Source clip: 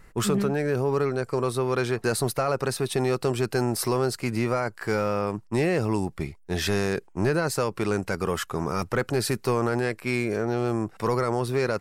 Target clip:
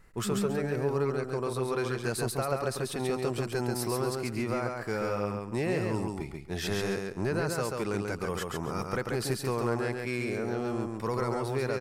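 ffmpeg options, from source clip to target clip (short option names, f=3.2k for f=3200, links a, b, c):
-af "aecho=1:1:137|274|411:0.668|0.154|0.0354,volume=-7dB"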